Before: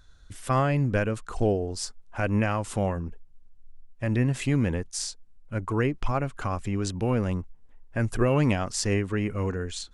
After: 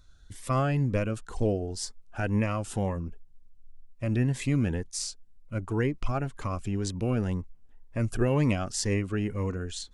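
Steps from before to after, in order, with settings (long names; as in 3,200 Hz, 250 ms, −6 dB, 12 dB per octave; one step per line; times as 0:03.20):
phaser whose notches keep moving one way rising 2 Hz
level −1.5 dB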